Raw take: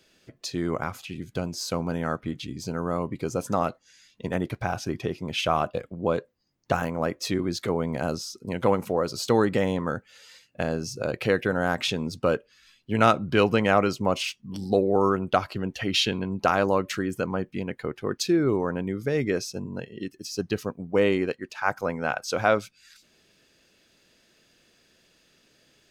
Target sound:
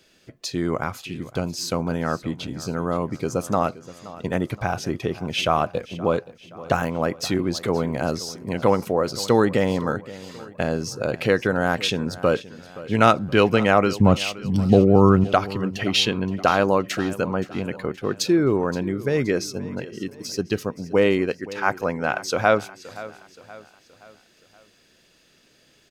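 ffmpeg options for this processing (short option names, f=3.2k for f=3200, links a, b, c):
-filter_complex "[0:a]asettb=1/sr,asplit=3[a][b][c];[a]atrim=end=14.004[d];[b]atrim=start=14:end=15.24,asetpts=PTS-STARTPTS,afade=t=in:d=0.004:c=qsin,afade=t=out:st=1.236:d=0.004:c=qsin,bass=f=250:g=13,treble=f=4k:g=-1[e];[c]atrim=start=15.236[f];[d][e]acrossfade=d=0.004:c1=hsin:c2=qsin[g];[g][f]acrossfade=d=0.004:c1=qsin:c2=hsin,aecho=1:1:523|1046|1569|2092:0.133|0.0613|0.0282|0.013,volume=3.5dB"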